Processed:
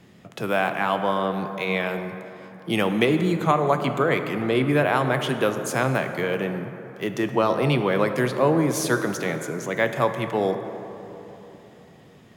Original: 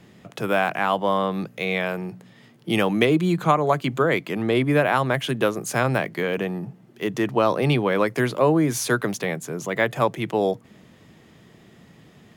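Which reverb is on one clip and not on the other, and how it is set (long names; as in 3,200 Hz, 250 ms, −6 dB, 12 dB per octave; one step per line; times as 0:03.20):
dense smooth reverb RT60 3.6 s, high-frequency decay 0.4×, DRR 7 dB
level −1.5 dB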